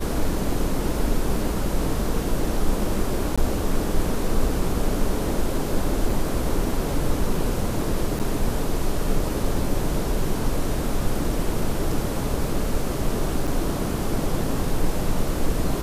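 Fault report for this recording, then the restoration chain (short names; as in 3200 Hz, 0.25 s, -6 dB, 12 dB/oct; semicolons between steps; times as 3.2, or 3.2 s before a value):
3.36–3.38 gap 16 ms
6.1 gap 2.8 ms
8.19–8.2 gap 8.5 ms
13.47–13.48 gap 6.3 ms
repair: interpolate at 3.36, 16 ms; interpolate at 6.1, 2.8 ms; interpolate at 8.19, 8.5 ms; interpolate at 13.47, 6.3 ms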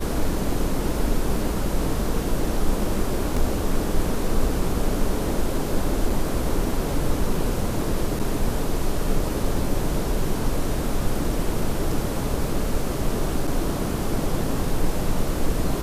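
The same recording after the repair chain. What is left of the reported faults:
none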